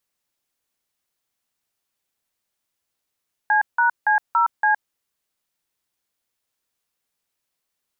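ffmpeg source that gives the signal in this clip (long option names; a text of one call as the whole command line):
ffmpeg -f lavfi -i "aevalsrc='0.141*clip(min(mod(t,0.283),0.115-mod(t,0.283))/0.002,0,1)*(eq(floor(t/0.283),0)*(sin(2*PI*852*mod(t,0.283))+sin(2*PI*1633*mod(t,0.283)))+eq(floor(t/0.283),1)*(sin(2*PI*941*mod(t,0.283))+sin(2*PI*1477*mod(t,0.283)))+eq(floor(t/0.283),2)*(sin(2*PI*852*mod(t,0.283))+sin(2*PI*1633*mod(t,0.283)))+eq(floor(t/0.283),3)*(sin(2*PI*941*mod(t,0.283))+sin(2*PI*1336*mod(t,0.283)))+eq(floor(t/0.283),4)*(sin(2*PI*852*mod(t,0.283))+sin(2*PI*1633*mod(t,0.283))))':duration=1.415:sample_rate=44100" out.wav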